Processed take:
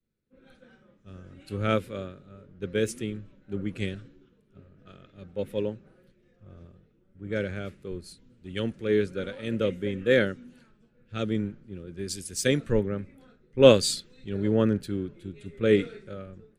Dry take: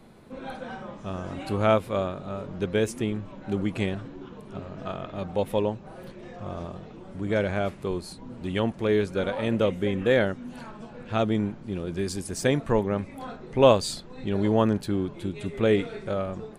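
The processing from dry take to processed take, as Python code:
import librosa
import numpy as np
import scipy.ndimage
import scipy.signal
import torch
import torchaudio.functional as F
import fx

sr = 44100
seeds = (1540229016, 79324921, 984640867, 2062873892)

y = fx.band_shelf(x, sr, hz=840.0, db=-12.5, octaves=1.0)
y = fx.band_widen(y, sr, depth_pct=100)
y = y * 10.0 ** (-4.0 / 20.0)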